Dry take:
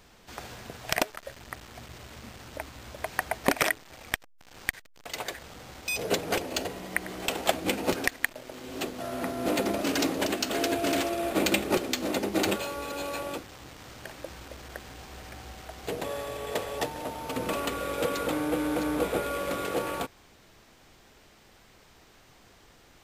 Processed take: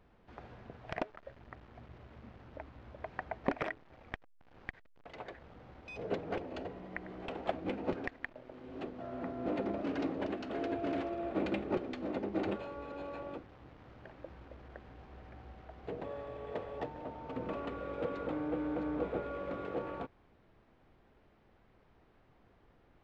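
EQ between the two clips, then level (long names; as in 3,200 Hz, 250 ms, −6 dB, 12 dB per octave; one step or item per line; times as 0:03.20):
head-to-tape spacing loss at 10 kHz 44 dB
−5.5 dB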